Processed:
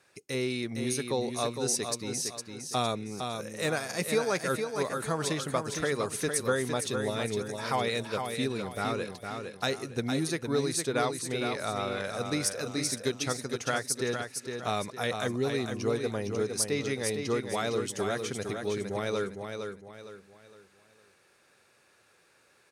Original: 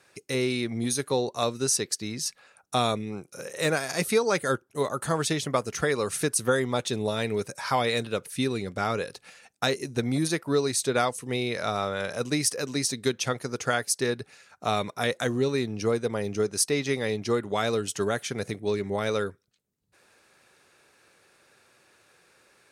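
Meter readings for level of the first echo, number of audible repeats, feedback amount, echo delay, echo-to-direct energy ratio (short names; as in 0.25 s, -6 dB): -6.0 dB, 4, 36%, 0.459 s, -5.5 dB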